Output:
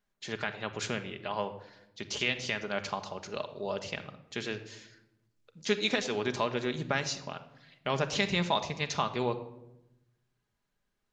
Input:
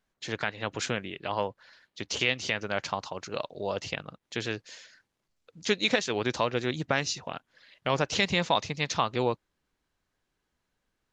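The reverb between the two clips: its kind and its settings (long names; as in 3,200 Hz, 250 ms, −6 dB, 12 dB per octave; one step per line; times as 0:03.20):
rectangular room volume 3,200 cubic metres, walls furnished, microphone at 1.3 metres
level −4 dB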